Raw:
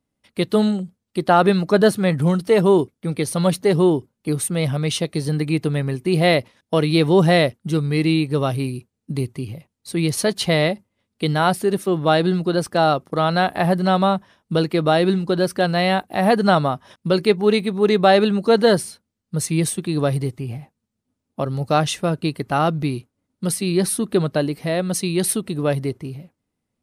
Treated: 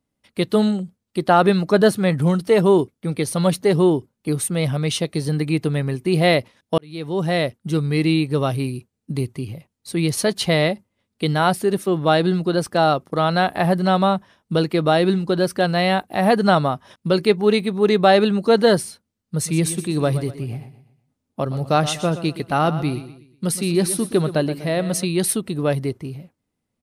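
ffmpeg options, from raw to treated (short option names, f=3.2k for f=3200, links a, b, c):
-filter_complex "[0:a]asplit=3[a][b][c];[a]afade=t=out:st=19.44:d=0.02[d];[b]aecho=1:1:122|244|366|488:0.224|0.0851|0.0323|0.0123,afade=t=in:st=19.44:d=0.02,afade=t=out:st=25.04:d=0.02[e];[c]afade=t=in:st=25.04:d=0.02[f];[d][e][f]amix=inputs=3:normalize=0,asplit=2[g][h];[g]atrim=end=6.78,asetpts=PTS-STARTPTS,afade=t=out:st=6.776:d=0.004:c=hsin[i];[h]atrim=start=6.78,asetpts=PTS-STARTPTS,afade=t=in:d=1.02[j];[i][j]concat=n=2:v=0:a=1"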